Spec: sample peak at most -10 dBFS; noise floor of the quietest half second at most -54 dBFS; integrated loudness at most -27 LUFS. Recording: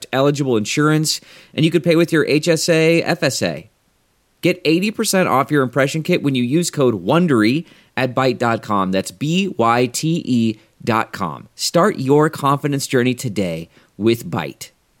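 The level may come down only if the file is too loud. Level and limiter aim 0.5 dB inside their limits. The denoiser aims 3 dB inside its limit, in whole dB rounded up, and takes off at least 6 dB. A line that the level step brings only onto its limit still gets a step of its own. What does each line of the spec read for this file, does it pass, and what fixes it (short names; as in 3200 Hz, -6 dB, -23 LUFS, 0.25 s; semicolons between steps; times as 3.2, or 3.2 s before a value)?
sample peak -3.0 dBFS: fail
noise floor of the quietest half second -61 dBFS: OK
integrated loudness -17.5 LUFS: fail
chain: gain -10 dB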